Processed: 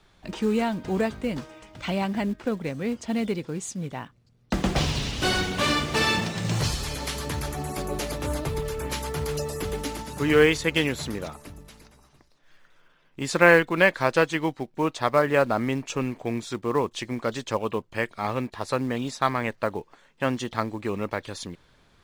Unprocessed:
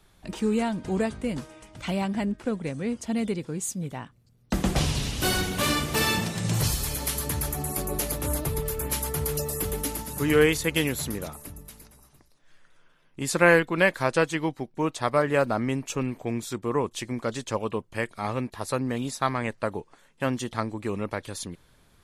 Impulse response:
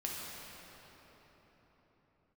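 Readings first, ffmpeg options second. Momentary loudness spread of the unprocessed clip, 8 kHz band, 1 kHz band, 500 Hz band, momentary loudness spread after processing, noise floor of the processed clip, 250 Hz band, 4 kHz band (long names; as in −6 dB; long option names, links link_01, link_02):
10 LU, −5.0 dB, +2.5 dB, +2.0 dB, 12 LU, −61 dBFS, +0.5 dB, +2.0 dB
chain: -filter_complex "[0:a]lowpass=5700,asplit=2[link_01][link_02];[link_02]acrusher=bits=4:mode=log:mix=0:aa=0.000001,volume=-9dB[link_03];[link_01][link_03]amix=inputs=2:normalize=0,lowshelf=frequency=250:gain=-4"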